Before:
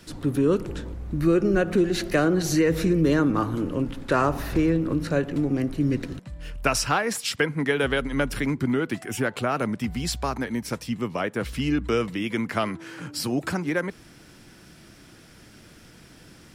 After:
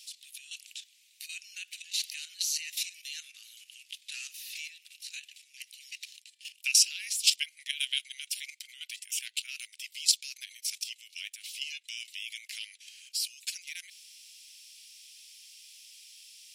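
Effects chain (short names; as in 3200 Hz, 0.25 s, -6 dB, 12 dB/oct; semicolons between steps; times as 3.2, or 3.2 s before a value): steep high-pass 2500 Hz 48 dB/oct; high shelf 5400 Hz +11 dB; level quantiser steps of 11 dB; high shelf 11000 Hz -12 dB; gain +5 dB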